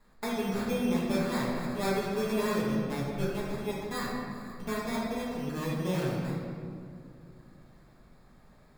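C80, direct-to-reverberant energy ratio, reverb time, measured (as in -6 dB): 1.5 dB, -7.5 dB, 2.4 s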